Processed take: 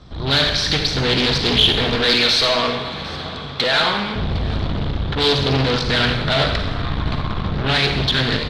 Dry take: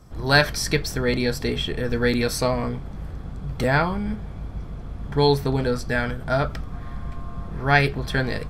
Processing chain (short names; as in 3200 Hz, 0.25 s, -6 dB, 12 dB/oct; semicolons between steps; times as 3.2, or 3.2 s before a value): 1.95–4.16 HPF 900 Hz 6 dB/oct; AGC gain up to 14 dB; tube stage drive 26 dB, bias 0.5; synth low-pass 3800 Hz, resonance Q 5.9; added harmonics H 5 -31 dB, 6 -45 dB, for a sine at -11.5 dBFS; echo 0.756 s -19.5 dB; reverb RT60 1.1 s, pre-delay 39 ms, DRR 4 dB; Doppler distortion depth 0.34 ms; gain +6.5 dB